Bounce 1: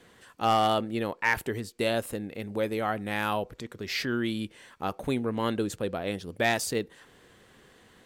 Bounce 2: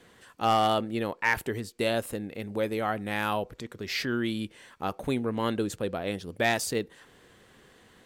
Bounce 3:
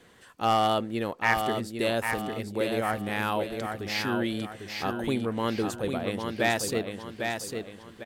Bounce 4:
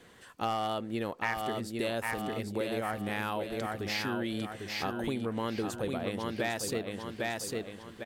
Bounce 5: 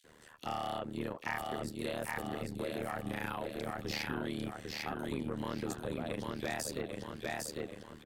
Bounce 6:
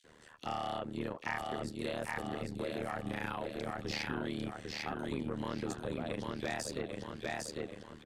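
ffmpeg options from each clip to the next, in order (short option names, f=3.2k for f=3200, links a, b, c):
-af anull
-af "aecho=1:1:801|1602|2403|3204|4005:0.531|0.207|0.0807|0.0315|0.0123"
-af "acompressor=threshold=-30dB:ratio=4"
-filter_complex "[0:a]tremolo=f=76:d=0.974,acrossover=split=220|1500[a][b][c];[b]asoftclip=type=tanh:threshold=-32.5dB[d];[a][d][c]amix=inputs=3:normalize=0,acrossover=split=3000[e][f];[e]adelay=40[g];[g][f]amix=inputs=2:normalize=0,volume=1dB"
-af "lowpass=8.5k"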